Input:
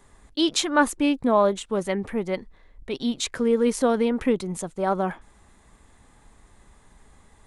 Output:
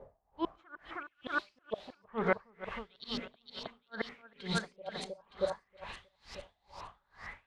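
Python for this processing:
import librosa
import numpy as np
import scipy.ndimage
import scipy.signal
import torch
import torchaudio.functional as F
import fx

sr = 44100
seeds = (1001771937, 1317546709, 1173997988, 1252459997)

p1 = fx.highpass(x, sr, hz=69.0, slope=6)
p2 = fx.peak_eq(p1, sr, hz=300.0, db=-12.0, octaves=1.3)
p3 = fx.hum_notches(p2, sr, base_hz=60, count=7)
p4 = fx.auto_swell(p3, sr, attack_ms=168.0)
p5 = fx.rev_gated(p4, sr, seeds[0], gate_ms=150, shape='rising', drr_db=10.5)
p6 = fx.gate_flip(p5, sr, shuts_db=-22.0, range_db=-40)
p7 = fx.quant_dither(p6, sr, seeds[1], bits=10, dither='triangular')
p8 = fx.filter_lfo_lowpass(p7, sr, shape='saw_up', hz=0.63, low_hz=520.0, high_hz=5200.0, q=6.2)
p9 = p8 + fx.echo_split(p8, sr, split_hz=2200.0, low_ms=316, high_ms=458, feedback_pct=52, wet_db=-5.5, dry=0)
p10 = p9 * 10.0 ** (-34 * (0.5 - 0.5 * np.cos(2.0 * np.pi * 2.2 * np.arange(len(p9)) / sr)) / 20.0)
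y = p10 * librosa.db_to_amplitude(7.5)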